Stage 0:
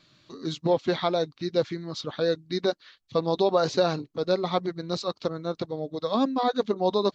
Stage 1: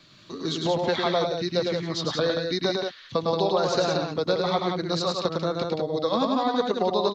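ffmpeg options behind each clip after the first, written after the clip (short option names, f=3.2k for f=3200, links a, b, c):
-filter_complex "[0:a]acrossover=split=130|580[a][b][c];[a]acompressor=threshold=-48dB:ratio=4[d];[b]acompressor=threshold=-36dB:ratio=4[e];[c]acompressor=threshold=-32dB:ratio=4[f];[d][e][f]amix=inputs=3:normalize=0,asplit=2[g][h];[h]aecho=0:1:105|177.8:0.631|0.562[i];[g][i]amix=inputs=2:normalize=0,volume=6dB"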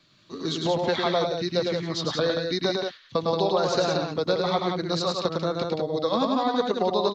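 -af "agate=range=-7dB:threshold=-38dB:ratio=16:detection=peak"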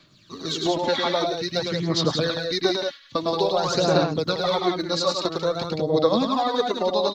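-af "highshelf=f=5.1k:g=6,aphaser=in_gain=1:out_gain=1:delay=3.6:decay=0.56:speed=0.5:type=sinusoidal"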